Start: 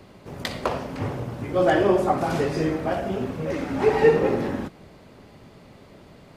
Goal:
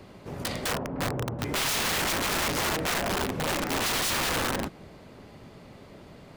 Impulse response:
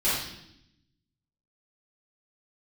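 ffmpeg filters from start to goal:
-filter_complex "[0:a]asettb=1/sr,asplit=3[s0][s1][s2];[s0]atrim=end=0.724[s3];[s1]atrim=start=0.72:end=1.39,asetpts=PTS-STARTPTS,afade=t=in:d=0.004:c=qsin,afade=t=out:st=0.666:d=0.004:c=qsin,lowpass=1000[s4];[s2]atrim=start=1.386[s5];[s3][s4]acrossfade=d=0.004:c1=hsin:c2=qsin[s6];[s6][s5]acrossfade=d=0.004:c1=qsin:c2=hsin,aeval=exprs='(mod(13.3*val(0)+1,2)-1)/13.3':c=same"

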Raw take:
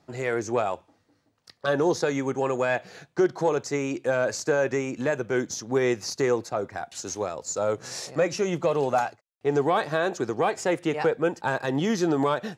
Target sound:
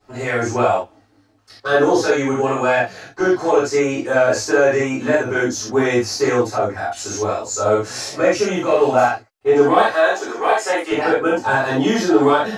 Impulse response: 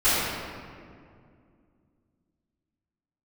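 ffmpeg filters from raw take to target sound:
-filter_complex "[0:a]asettb=1/sr,asplit=3[s0][s1][s2];[s0]atrim=end=9.854[s3];[s1]atrim=start=9.85:end=10.91,asetpts=PTS-STARTPTS,afade=t=in:d=0.004:c=qsin,afade=t=out:st=1.056:d=0.004:c=qsin,highpass=510[s4];[s2]atrim=start=10.906[s5];[s3][s4]acrossfade=d=0.004:c1=hsin:c2=qsin[s6];[s6][s5]acrossfade=d=0.004:c1=qsin:c2=hsin[s7];[1:a]atrim=start_sample=2205,atrim=end_sample=4410[s8];[s7][s8]afir=irnorm=-1:irlink=0,volume=0.531"

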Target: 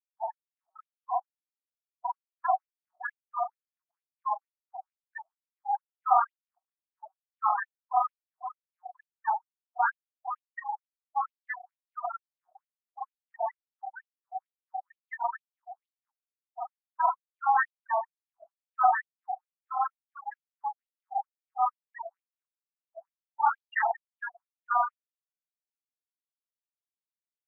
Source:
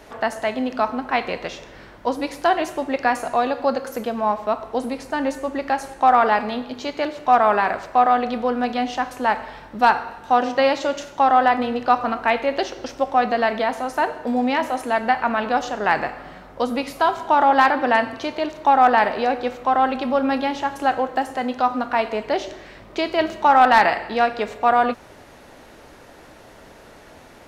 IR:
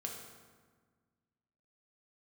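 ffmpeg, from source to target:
-filter_complex "[0:a]afftfilt=real='re':imag='-im':win_size=4096:overlap=0.75,acrossover=split=2200[s0][s1];[s0]bandreject=f=50:t=h:w=6,bandreject=f=100:t=h:w=6,bandreject=f=150:t=h:w=6[s2];[s1]asoftclip=type=hard:threshold=0.0501[s3];[s2][s3]amix=inputs=2:normalize=0,afftfilt=real='re*gte(hypot(re,im),0.178)':imag='im*gte(hypot(re,im),0.178)':win_size=1024:overlap=0.75,afftfilt=real='re*between(b*sr/1024,910*pow(6200/910,0.5+0.5*sin(2*PI*2.2*pts/sr))/1.41,910*pow(6200/910,0.5+0.5*sin(2*PI*2.2*pts/sr))*1.41)':imag='im*between(b*sr/1024,910*pow(6200/910,0.5+0.5*sin(2*PI*2.2*pts/sr))/1.41,910*pow(6200/910,0.5+0.5*sin(2*PI*2.2*pts/sr))*1.41)':win_size=1024:overlap=0.75"

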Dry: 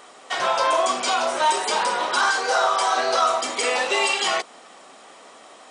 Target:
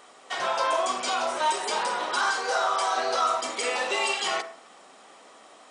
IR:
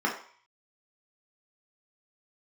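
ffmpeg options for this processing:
-filter_complex "[0:a]asplit=2[s0][s1];[1:a]atrim=start_sample=2205,adelay=48[s2];[s1][s2]afir=irnorm=-1:irlink=0,volume=0.0841[s3];[s0][s3]amix=inputs=2:normalize=0,volume=0.531"

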